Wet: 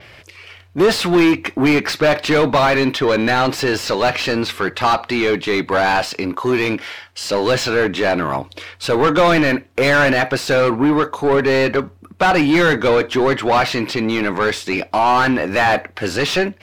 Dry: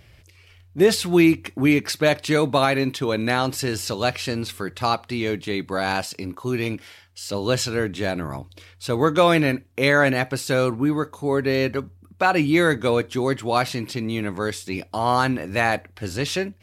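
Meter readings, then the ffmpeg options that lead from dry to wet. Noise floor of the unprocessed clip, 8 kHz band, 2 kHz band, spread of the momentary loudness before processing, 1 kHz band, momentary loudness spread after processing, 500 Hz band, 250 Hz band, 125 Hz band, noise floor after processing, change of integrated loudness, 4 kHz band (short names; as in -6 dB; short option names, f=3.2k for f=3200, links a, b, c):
-52 dBFS, +2.0 dB, +6.5 dB, 11 LU, +7.0 dB, 8 LU, +6.0 dB, +4.5 dB, +1.5 dB, -46 dBFS, +5.5 dB, +6.0 dB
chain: -filter_complex "[0:a]asplit=2[a][b];[b]highpass=f=720:p=1,volume=25dB,asoftclip=type=tanh:threshold=-5.5dB[c];[a][c]amix=inputs=2:normalize=0,lowpass=f=2k:p=1,volume=-6dB,adynamicequalizer=threshold=0.00501:dfrequency=9500:dqfactor=1.3:tfrequency=9500:tqfactor=1.3:attack=5:release=100:ratio=0.375:range=3.5:mode=cutabove:tftype=bell"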